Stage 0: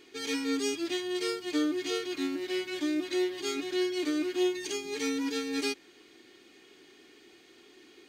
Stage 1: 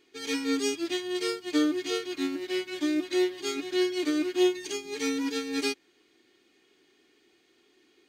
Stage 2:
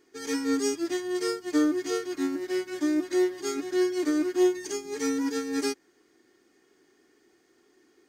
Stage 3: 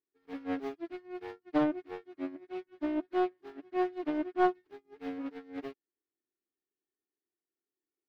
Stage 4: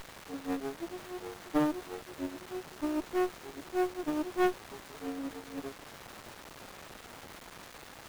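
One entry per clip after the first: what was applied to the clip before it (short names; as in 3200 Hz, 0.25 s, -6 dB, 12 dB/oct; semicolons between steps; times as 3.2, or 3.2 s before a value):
upward expander 1.5:1, over -51 dBFS; gain +5 dB
band shelf 3100 Hz -10.5 dB 1.1 oct; in parallel at -10 dB: soft clip -24.5 dBFS, distortion -13 dB
self-modulated delay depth 0.71 ms; air absorption 370 m; upward expander 2.5:1, over -44 dBFS
in parallel at -5.5 dB: requantised 6-bit, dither triangular; on the sum: running maximum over 17 samples; gain -3.5 dB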